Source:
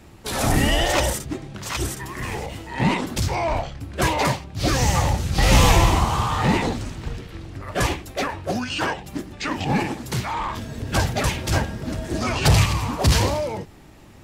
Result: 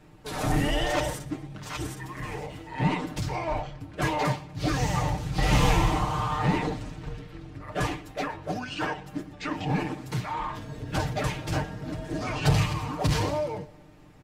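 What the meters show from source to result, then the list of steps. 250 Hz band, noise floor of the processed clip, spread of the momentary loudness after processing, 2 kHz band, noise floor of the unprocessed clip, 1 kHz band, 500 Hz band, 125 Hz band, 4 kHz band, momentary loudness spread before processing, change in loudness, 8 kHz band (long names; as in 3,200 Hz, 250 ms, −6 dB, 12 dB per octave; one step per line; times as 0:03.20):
−5.0 dB, −49 dBFS, 13 LU, −7.0 dB, −45 dBFS, −5.5 dB, −6.0 dB, −6.0 dB, −9.0 dB, 14 LU, −6.5 dB, −11.5 dB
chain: high-shelf EQ 3,700 Hz −8 dB
comb filter 6.6 ms, depth 70%
repeating echo 121 ms, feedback 50%, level −21.5 dB
level −7 dB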